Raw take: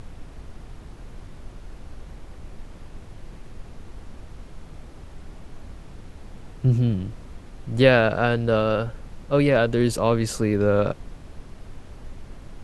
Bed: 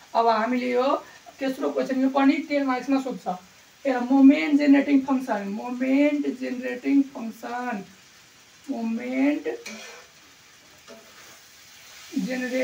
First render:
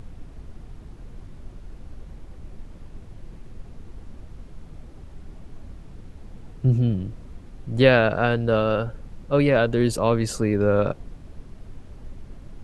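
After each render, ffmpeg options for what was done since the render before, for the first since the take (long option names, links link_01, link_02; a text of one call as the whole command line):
ffmpeg -i in.wav -af "afftdn=noise_reduction=6:noise_floor=-43" out.wav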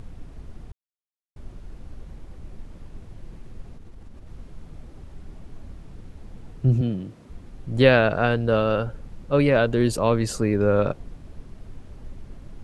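ffmpeg -i in.wav -filter_complex "[0:a]asettb=1/sr,asplit=3[link_01][link_02][link_03];[link_01]atrim=end=3.744[link_04];[link_02]atrim=start=3.74:end=4.27,asetpts=PTS-STARTPTS,afade=type=in:duration=0.004:curve=qsin,afade=type=out:start_time=0.526:duration=0.004:curve=qsin,acompressor=threshold=-37dB:ratio=6:attack=3.2:release=140:knee=1:detection=peak[link_05];[link_03]atrim=start=4.266[link_06];[link_04][link_05]acrossfade=duration=0.004:curve1=hsin:curve2=qsin[link_07];[link_07][link_06]acrossfade=duration=0.004:curve1=qsin:curve2=hsin,asettb=1/sr,asplit=3[link_08][link_09][link_10];[link_08]atrim=end=6.814[link_11];[link_09]atrim=start=6.81:end=7.3,asetpts=PTS-STARTPTS,afade=type=in:duration=0.004:curve=qsin,afade=type=out:start_time=0.486:duration=0.004:curve=qsin,highpass=160[link_12];[link_10]atrim=start=7.296[link_13];[link_11][link_12]acrossfade=duration=0.004:curve1=hsin:curve2=qsin[link_14];[link_14][link_13]acrossfade=duration=0.004:curve1=qsin:curve2=hsin,asplit=3[link_15][link_16][link_17];[link_15]atrim=end=0.72,asetpts=PTS-STARTPTS,afade=type=out:start_time=0.716:duration=0.004:curve=hsin[link_18];[link_16]atrim=start=0.72:end=1.36,asetpts=PTS-STARTPTS,volume=0[link_19];[link_17]atrim=start=1.36,asetpts=PTS-STARTPTS,afade=type=in:duration=0.004:curve=hsin[link_20];[link_18][link_19][link_20]concat=n=3:v=0:a=1" out.wav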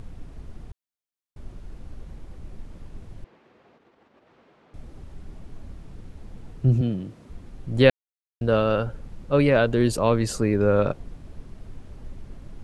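ffmpeg -i in.wav -filter_complex "[0:a]asettb=1/sr,asplit=3[link_01][link_02][link_03];[link_01]atrim=end=3.244[link_04];[link_02]atrim=start=3.24:end=4.74,asetpts=PTS-STARTPTS,afade=type=in:duration=0.004:curve=qsin,afade=type=out:start_time=1.496:duration=0.004:curve=qsin,highpass=440,lowpass=3000[link_05];[link_03]atrim=start=4.736[link_06];[link_04][link_05]acrossfade=duration=0.004:curve1=hsin:curve2=qsin[link_07];[link_07][link_06]acrossfade=duration=0.004:curve1=qsin:curve2=hsin,asplit=3[link_08][link_09][link_10];[link_08]atrim=end=7.9,asetpts=PTS-STARTPTS,afade=type=out:start_time=7.896:duration=0.004:curve=hsin[link_11];[link_09]atrim=start=7.9:end=8.41,asetpts=PTS-STARTPTS,volume=0[link_12];[link_10]atrim=start=8.41,asetpts=PTS-STARTPTS,afade=type=in:duration=0.004:curve=hsin[link_13];[link_11][link_12][link_13]concat=n=3:v=0:a=1" out.wav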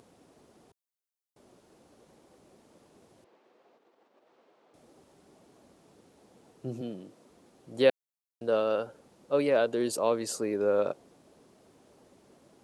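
ffmpeg -i in.wav -af "highpass=450,equalizer=frequency=1900:width=0.52:gain=-10" out.wav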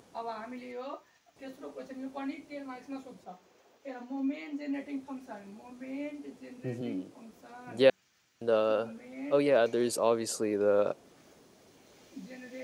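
ffmpeg -i in.wav -i bed.wav -filter_complex "[1:a]volume=-18.5dB[link_01];[0:a][link_01]amix=inputs=2:normalize=0" out.wav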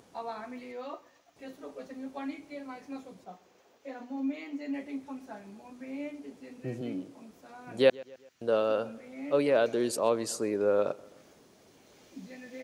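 ffmpeg -i in.wav -filter_complex "[0:a]asplit=2[link_01][link_02];[link_02]adelay=130,lowpass=frequency=4400:poles=1,volume=-22dB,asplit=2[link_03][link_04];[link_04]adelay=130,lowpass=frequency=4400:poles=1,volume=0.48,asplit=2[link_05][link_06];[link_06]adelay=130,lowpass=frequency=4400:poles=1,volume=0.48[link_07];[link_01][link_03][link_05][link_07]amix=inputs=4:normalize=0" out.wav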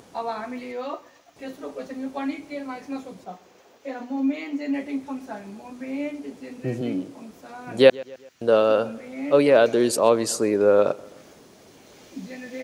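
ffmpeg -i in.wav -af "volume=9dB,alimiter=limit=-1dB:level=0:latency=1" out.wav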